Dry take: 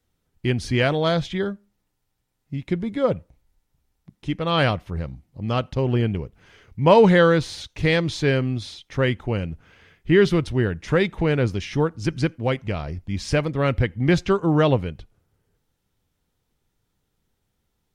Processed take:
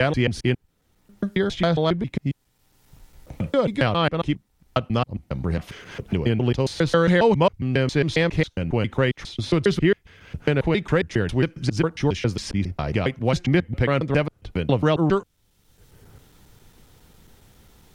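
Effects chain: slices played last to first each 136 ms, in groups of 7; three bands compressed up and down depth 70%

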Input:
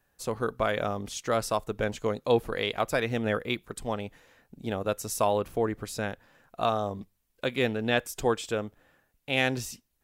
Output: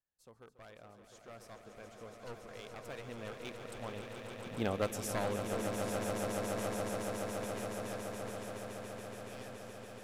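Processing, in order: one-sided wavefolder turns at -21.5 dBFS; Doppler pass-by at 4.62 s, 5 m/s, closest 1.3 m; echo with a slow build-up 141 ms, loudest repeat 8, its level -8 dB; trim -2.5 dB

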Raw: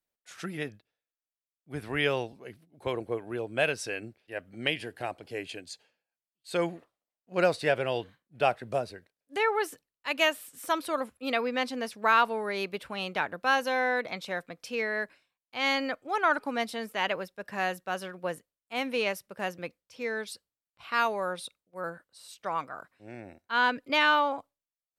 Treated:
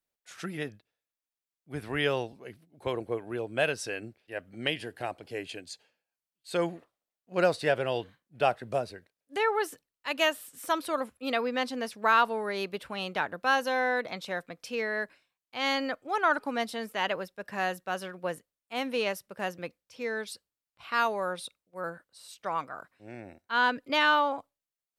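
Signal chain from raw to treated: dynamic bell 2.3 kHz, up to -5 dB, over -46 dBFS, Q 5.3

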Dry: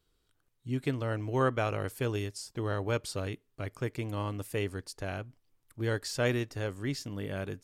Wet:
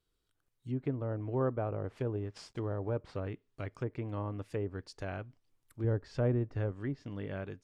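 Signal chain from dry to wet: 1.84–3.16 s: CVSD coder 64 kbps; level rider gain up to 4.5 dB; low-pass that closes with the level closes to 810 Hz, closed at -24 dBFS; 5.84–6.72 s: bass shelf 150 Hz +8.5 dB; trim -7 dB

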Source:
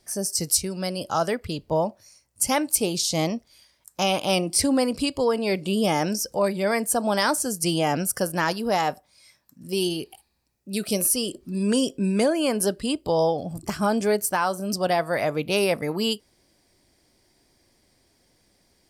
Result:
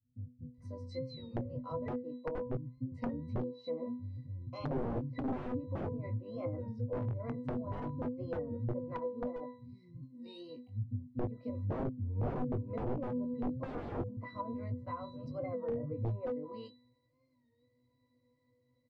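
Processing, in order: octave divider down 1 oct, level -5 dB; treble shelf 10 kHz -8.5 dB; bands offset in time lows, highs 540 ms, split 220 Hz; dynamic bell 110 Hz, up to +5 dB, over -45 dBFS, Q 4.2; pitch-class resonator B, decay 0.39 s; integer overflow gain 34 dB; doubling 20 ms -7 dB; low-pass that closes with the level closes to 540 Hz, closed at -39 dBFS; warped record 33 1/3 rpm, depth 100 cents; trim +7 dB

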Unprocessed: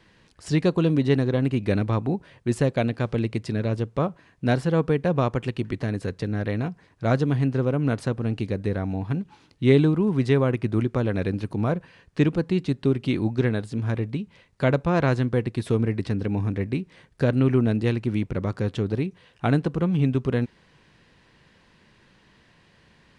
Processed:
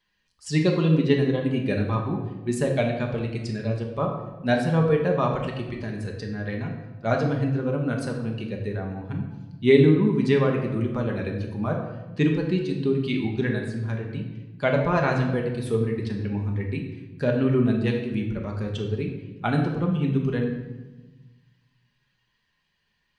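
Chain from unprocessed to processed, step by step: expander on every frequency bin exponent 1.5; bass shelf 300 Hz -7.5 dB; simulated room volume 660 m³, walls mixed, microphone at 1.3 m; trim +3 dB

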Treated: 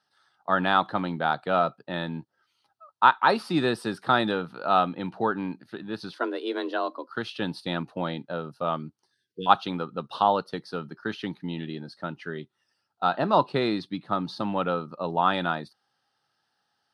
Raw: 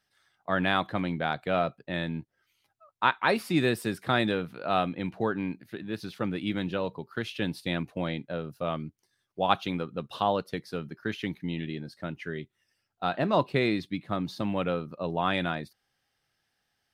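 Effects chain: 9.13–9.47 s: spectral selection erased 490–1500 Hz; cabinet simulation 140–9600 Hz, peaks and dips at 870 Hz +8 dB, 1.3 kHz +7 dB, 2.2 kHz -9 dB, 4.4 kHz +5 dB, 7.2 kHz -10 dB; 6.13–7.09 s: frequency shift +130 Hz; trim +1 dB

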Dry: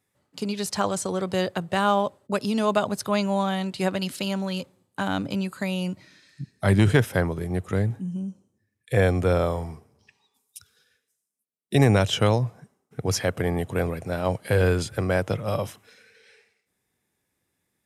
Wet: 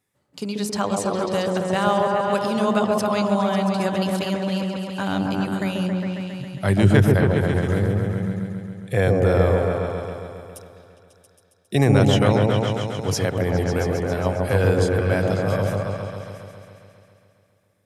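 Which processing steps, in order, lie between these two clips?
delay with an opening low-pass 136 ms, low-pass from 750 Hz, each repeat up 1 oct, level 0 dB

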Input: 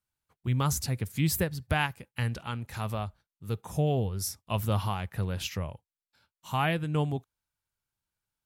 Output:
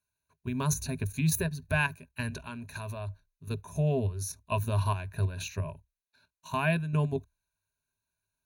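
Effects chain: level held to a coarse grid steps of 10 dB; rippled EQ curve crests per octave 1.5, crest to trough 16 dB

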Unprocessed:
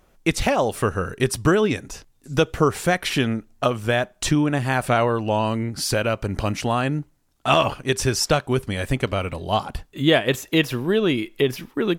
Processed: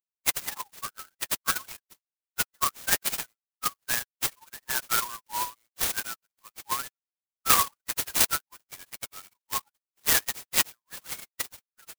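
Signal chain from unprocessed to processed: expander on every frequency bin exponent 3; steep high-pass 1 kHz 72 dB/octave; sampling jitter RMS 0.12 ms; trim +6 dB

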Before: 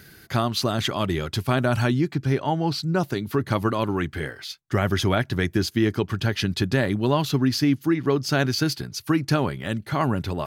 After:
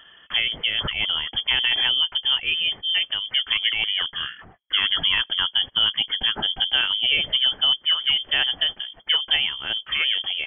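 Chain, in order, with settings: band-stop 730 Hz, Q 12; frequency inversion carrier 3.3 kHz

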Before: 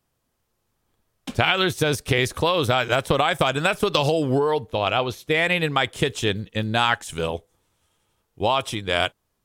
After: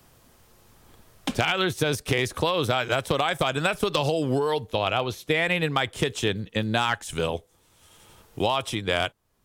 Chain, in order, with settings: overload inside the chain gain 9.5 dB; three bands compressed up and down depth 70%; trim -3.5 dB

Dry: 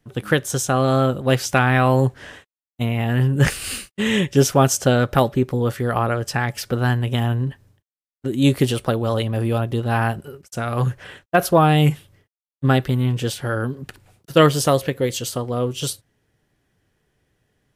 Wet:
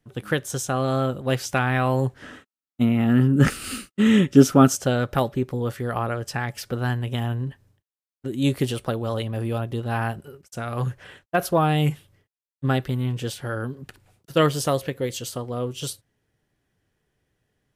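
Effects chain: 2.22–4.76 s: small resonant body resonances 250/1300 Hz, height 13 dB, ringing for 25 ms; trim -5.5 dB

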